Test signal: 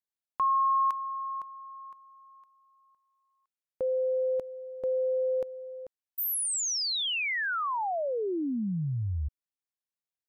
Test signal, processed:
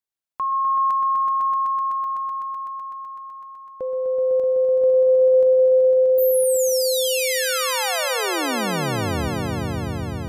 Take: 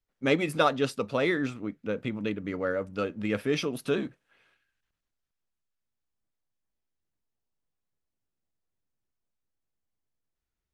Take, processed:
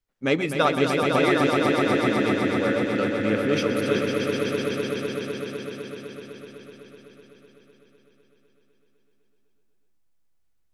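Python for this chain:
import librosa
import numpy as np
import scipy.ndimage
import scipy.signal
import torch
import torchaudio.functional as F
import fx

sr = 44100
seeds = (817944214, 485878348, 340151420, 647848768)

y = fx.echo_swell(x, sr, ms=126, loudest=5, wet_db=-6.0)
y = y * librosa.db_to_amplitude(2.0)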